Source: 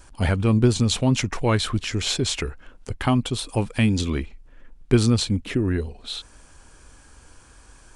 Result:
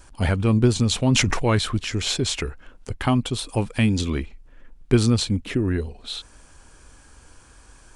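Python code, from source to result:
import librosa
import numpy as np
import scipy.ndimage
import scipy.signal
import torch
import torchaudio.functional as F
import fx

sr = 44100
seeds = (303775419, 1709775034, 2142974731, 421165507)

y = fx.sustainer(x, sr, db_per_s=22.0, at=(1.0, 1.59))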